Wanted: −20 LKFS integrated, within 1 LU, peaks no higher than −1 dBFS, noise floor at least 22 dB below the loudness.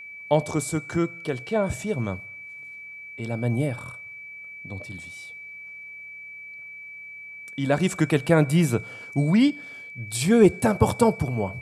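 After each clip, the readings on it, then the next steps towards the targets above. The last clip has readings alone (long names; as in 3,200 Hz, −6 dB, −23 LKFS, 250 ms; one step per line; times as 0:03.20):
interfering tone 2,300 Hz; level of the tone −38 dBFS; integrated loudness −23.5 LKFS; sample peak −6.0 dBFS; target loudness −20.0 LKFS
→ notch filter 2,300 Hz, Q 30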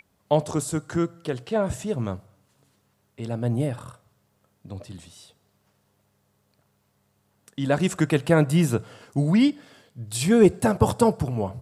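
interfering tone none found; integrated loudness −23.5 LKFS; sample peak −6.0 dBFS; target loudness −20.0 LKFS
→ level +3.5 dB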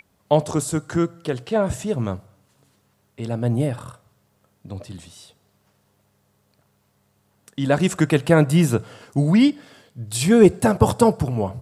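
integrated loudness −20.0 LKFS; sample peak −2.5 dBFS; background noise floor −65 dBFS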